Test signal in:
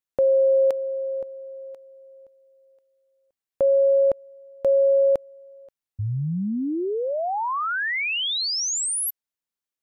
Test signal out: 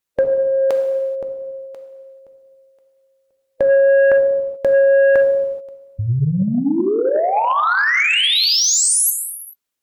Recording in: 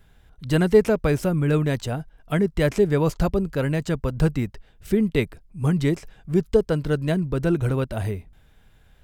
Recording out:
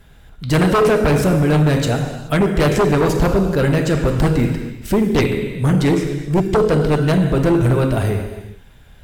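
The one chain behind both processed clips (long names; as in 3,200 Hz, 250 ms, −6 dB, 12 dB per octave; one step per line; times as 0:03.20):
reverb whose tail is shaped and stops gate 460 ms falling, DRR 3 dB
harmonic and percussive parts rebalanced percussive +3 dB
sine wavefolder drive 9 dB, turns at −4 dBFS
level −6 dB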